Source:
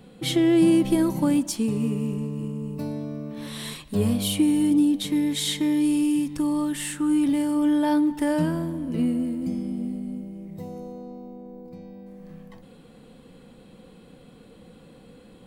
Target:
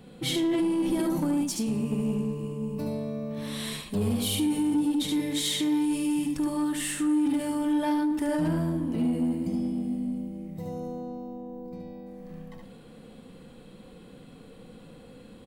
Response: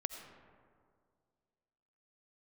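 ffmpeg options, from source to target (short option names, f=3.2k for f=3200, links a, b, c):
-filter_complex "[0:a]asettb=1/sr,asplit=3[a][b][c];[a]atrim=end=1.364[d];[b]atrim=start=1.36:end=1.91,asetpts=PTS-STARTPTS,afade=t=in:d=0.004:c=qsin,afade=t=out:st=0.546:d=0.004:c=qsin,acompressor=threshold=-25dB:ratio=2.5[e];[c]atrim=start=1.906[f];[d][e]acrossfade=d=0.004:c1=hsin:c2=qsin[g];[g][f]acrossfade=d=0.004:c1=qsin:c2=hsin,aecho=1:1:73:0.668,alimiter=limit=-16dB:level=0:latency=1:release=36,asoftclip=type=tanh:threshold=-18.5dB,asplit=2[h][i];[1:a]atrim=start_sample=2205[j];[i][j]afir=irnorm=-1:irlink=0,volume=-4dB[k];[h][k]amix=inputs=2:normalize=0,volume=-5dB"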